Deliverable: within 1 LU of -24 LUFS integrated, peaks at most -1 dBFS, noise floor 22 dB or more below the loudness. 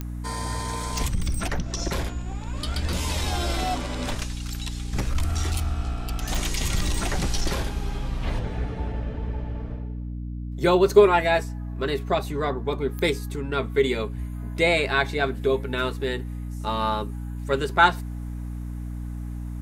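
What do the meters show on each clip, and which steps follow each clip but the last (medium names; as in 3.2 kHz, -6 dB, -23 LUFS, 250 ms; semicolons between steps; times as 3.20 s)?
clicks found 4; hum 60 Hz; highest harmonic 300 Hz; hum level -30 dBFS; loudness -26.0 LUFS; peak level -3.5 dBFS; loudness target -24.0 LUFS
-> de-click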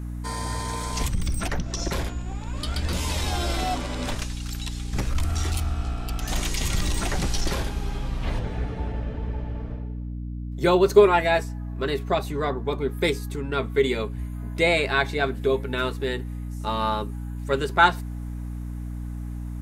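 clicks found 0; hum 60 Hz; highest harmonic 300 Hz; hum level -30 dBFS
-> hum notches 60/120/180/240/300 Hz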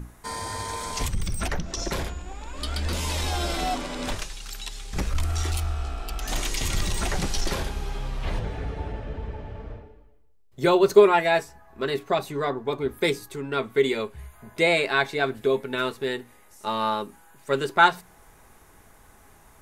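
hum not found; loudness -26.0 LUFS; peak level -3.5 dBFS; loudness target -24.0 LUFS
-> trim +2 dB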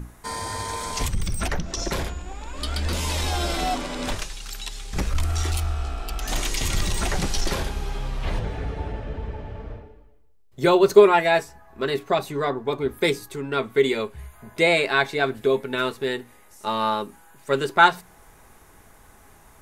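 loudness -24.0 LUFS; peak level -1.5 dBFS; noise floor -52 dBFS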